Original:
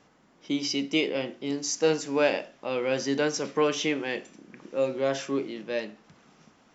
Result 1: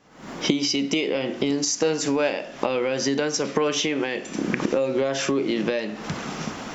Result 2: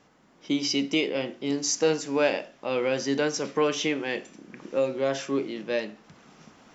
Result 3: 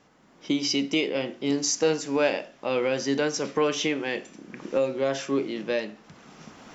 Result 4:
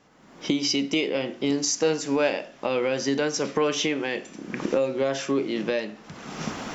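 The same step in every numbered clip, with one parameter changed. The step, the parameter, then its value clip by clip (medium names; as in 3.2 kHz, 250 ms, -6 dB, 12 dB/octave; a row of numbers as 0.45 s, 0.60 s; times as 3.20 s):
recorder AGC, rising by: 89 dB/s, 5.4 dB/s, 13 dB/s, 35 dB/s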